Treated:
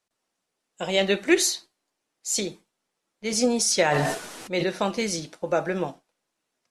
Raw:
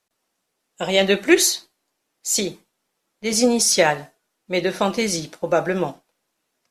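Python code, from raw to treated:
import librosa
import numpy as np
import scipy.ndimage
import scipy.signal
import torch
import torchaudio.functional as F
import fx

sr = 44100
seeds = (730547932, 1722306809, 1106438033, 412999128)

y = scipy.signal.sosfilt(scipy.signal.butter(4, 11000.0, 'lowpass', fs=sr, output='sos'), x)
y = fx.sustainer(y, sr, db_per_s=27.0, at=(3.9, 4.68), fade=0.02)
y = y * 10.0 ** (-5.0 / 20.0)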